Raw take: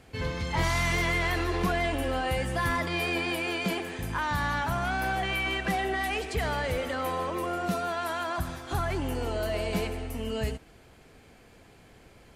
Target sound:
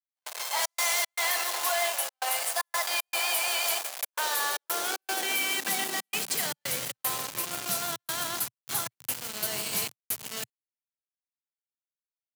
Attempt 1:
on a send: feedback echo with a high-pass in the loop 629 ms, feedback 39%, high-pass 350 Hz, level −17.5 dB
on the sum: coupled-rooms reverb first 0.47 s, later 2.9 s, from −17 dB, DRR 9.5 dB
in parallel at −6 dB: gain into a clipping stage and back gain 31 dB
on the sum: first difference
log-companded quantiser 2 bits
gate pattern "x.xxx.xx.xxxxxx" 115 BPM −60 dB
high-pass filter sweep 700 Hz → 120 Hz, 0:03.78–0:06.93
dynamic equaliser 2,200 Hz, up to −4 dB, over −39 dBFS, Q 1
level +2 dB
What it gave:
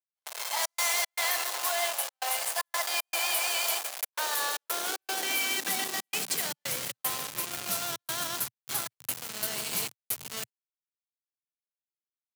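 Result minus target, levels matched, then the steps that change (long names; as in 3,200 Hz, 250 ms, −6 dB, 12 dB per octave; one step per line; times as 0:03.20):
gain into a clipping stage and back: distortion +17 dB
change: gain into a clipping stage and back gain 20.5 dB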